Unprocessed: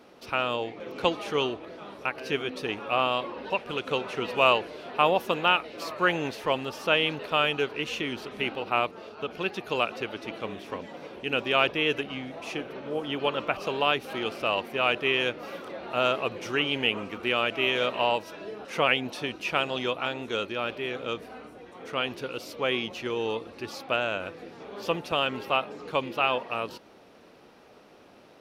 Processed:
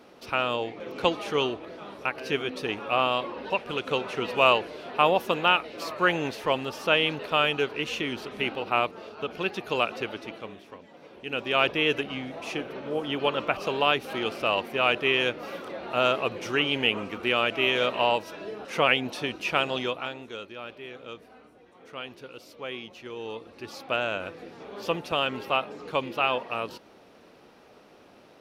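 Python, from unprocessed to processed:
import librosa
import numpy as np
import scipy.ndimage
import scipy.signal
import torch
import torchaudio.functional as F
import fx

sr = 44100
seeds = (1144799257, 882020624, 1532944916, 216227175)

y = fx.gain(x, sr, db=fx.line((10.1, 1.0), (10.8, -11.0), (11.71, 1.5), (19.75, 1.5), (20.38, -9.0), (23.03, -9.0), (24.01, 0.0)))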